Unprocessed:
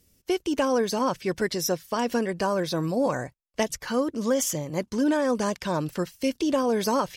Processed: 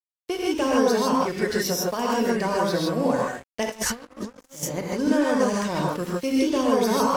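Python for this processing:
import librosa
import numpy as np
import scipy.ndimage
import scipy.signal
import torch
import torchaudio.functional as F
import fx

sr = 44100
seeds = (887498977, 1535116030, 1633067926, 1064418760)

y = fx.rev_gated(x, sr, seeds[0], gate_ms=180, shape='rising', drr_db=-4.0)
y = fx.over_compress(y, sr, threshold_db=-29.0, ratio=-0.5, at=(3.68, 4.63))
y = np.sign(y) * np.maximum(np.abs(y) - 10.0 ** (-40.0 / 20.0), 0.0)
y = y * librosa.db_to_amplitude(-1.5)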